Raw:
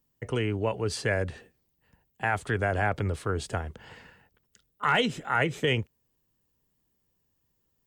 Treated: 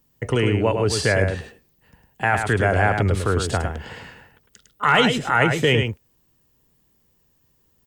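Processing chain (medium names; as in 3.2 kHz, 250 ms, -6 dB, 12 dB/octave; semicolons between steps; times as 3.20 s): in parallel at -3 dB: peak limiter -25.5 dBFS, peak gain reduction 11.5 dB; on the sum: delay 105 ms -6 dB; trim +5.5 dB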